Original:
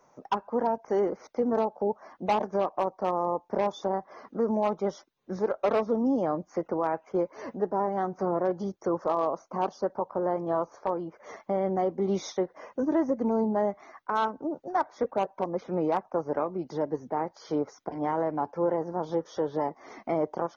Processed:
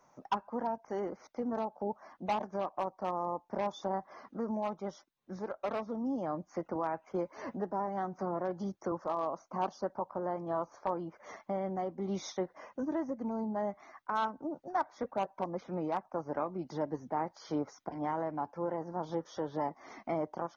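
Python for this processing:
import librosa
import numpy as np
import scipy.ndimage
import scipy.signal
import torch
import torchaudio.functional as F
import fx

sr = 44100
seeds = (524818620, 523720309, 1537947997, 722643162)

y = fx.rider(x, sr, range_db=3, speed_s=0.5)
y = fx.peak_eq(y, sr, hz=440.0, db=-6.5, octaves=0.64)
y = fx.band_squash(y, sr, depth_pct=40, at=(6.75, 8.92))
y = y * librosa.db_to_amplitude(-5.0)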